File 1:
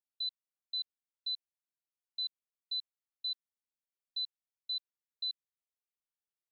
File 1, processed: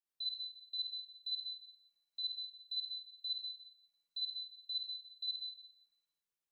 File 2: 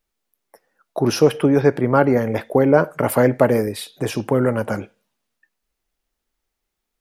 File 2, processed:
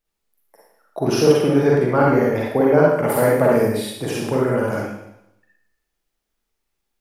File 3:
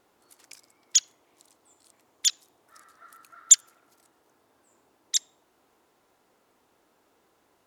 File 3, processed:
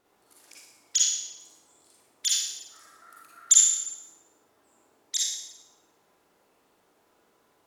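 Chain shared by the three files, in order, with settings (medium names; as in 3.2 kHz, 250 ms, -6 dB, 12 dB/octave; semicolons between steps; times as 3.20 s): Schroeder reverb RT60 0.82 s, DRR -4.5 dB; trim -5 dB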